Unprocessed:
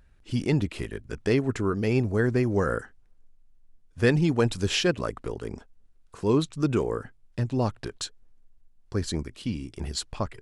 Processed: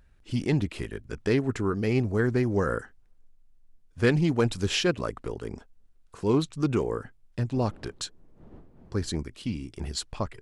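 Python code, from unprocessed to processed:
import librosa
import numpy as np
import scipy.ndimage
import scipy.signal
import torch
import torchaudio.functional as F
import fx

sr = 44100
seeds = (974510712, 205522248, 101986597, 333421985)

y = fx.dmg_wind(x, sr, seeds[0], corner_hz=280.0, level_db=-43.0, at=(7.52, 9.09), fade=0.02)
y = fx.doppler_dist(y, sr, depth_ms=0.11)
y = F.gain(torch.from_numpy(y), -1.0).numpy()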